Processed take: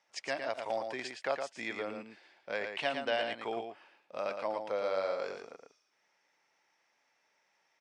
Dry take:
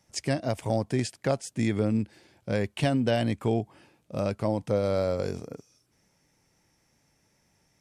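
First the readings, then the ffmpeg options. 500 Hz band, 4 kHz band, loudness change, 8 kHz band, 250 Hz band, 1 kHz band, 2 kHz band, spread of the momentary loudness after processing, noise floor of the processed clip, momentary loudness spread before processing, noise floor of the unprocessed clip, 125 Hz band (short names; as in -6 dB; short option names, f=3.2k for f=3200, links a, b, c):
-6.5 dB, -2.5 dB, -7.5 dB, under -10 dB, -18.5 dB, -2.0 dB, +0.5 dB, 14 LU, -76 dBFS, 13 LU, -70 dBFS, -30.0 dB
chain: -af "highpass=780,lowpass=3.5k,aecho=1:1:114:0.501"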